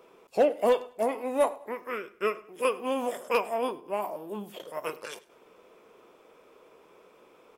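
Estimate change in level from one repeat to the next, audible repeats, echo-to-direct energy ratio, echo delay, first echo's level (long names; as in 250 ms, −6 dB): −10.0 dB, 2, −21.5 dB, 101 ms, −22.0 dB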